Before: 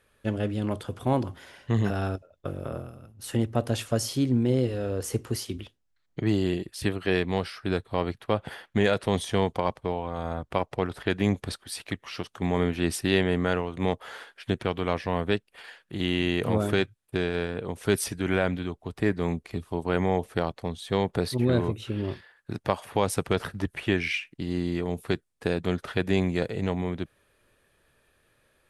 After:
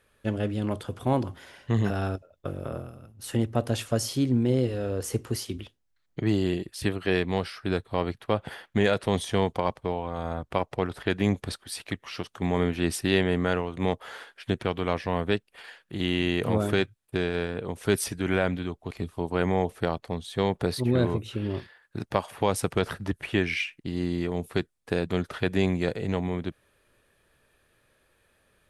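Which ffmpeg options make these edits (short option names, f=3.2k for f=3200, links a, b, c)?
-filter_complex "[0:a]asplit=2[a][b];[a]atrim=end=18.912[c];[b]atrim=start=19.448[d];[c][d]acrossfade=d=0.004:c1=hsin:c2=hsin"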